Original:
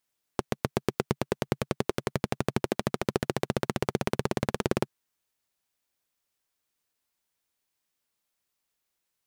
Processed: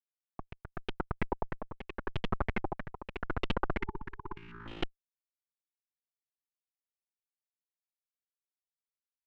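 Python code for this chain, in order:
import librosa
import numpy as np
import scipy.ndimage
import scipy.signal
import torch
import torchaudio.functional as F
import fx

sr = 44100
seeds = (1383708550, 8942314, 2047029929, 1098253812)

y = fx.fade_in_head(x, sr, length_s=1.15)
y = fx.low_shelf(y, sr, hz=170.0, db=-9.0)
y = fx.schmitt(y, sr, flips_db=-35.0)
y = fx.spec_erase(y, sr, start_s=3.8, length_s=0.81, low_hz=430.0, high_hz=860.0)
y = fx.comb_fb(y, sr, f0_hz=57.0, decay_s=0.91, harmonics='all', damping=0.0, mix_pct=100, at=(4.36, 4.81), fade=0.02)
y = y * (1.0 - 0.78 / 2.0 + 0.78 / 2.0 * np.cos(2.0 * np.pi * 0.84 * (np.arange(len(y)) / sr)))
y = fx.filter_held_lowpass(y, sr, hz=6.2, low_hz=860.0, high_hz=3100.0)
y = y * 10.0 ** (8.0 / 20.0)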